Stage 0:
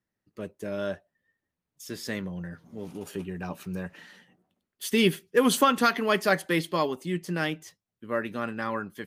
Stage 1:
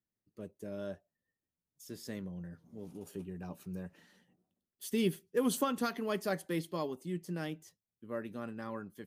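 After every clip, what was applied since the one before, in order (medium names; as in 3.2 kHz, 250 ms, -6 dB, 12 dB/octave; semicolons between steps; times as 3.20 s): peaking EQ 2 kHz -9 dB 2.7 oct; trim -7 dB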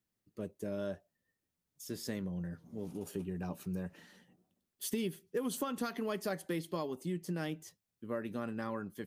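compression 6:1, threshold -38 dBFS, peak gain reduction 12 dB; trim +5 dB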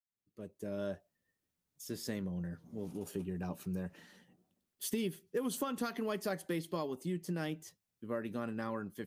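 fade-in on the opening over 0.84 s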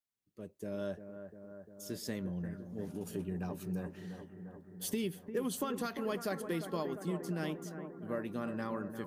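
bucket-brigade echo 349 ms, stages 4096, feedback 73%, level -9.5 dB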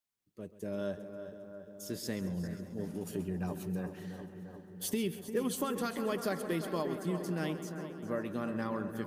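multi-head delay 134 ms, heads first and third, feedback 50%, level -15 dB; trim +2 dB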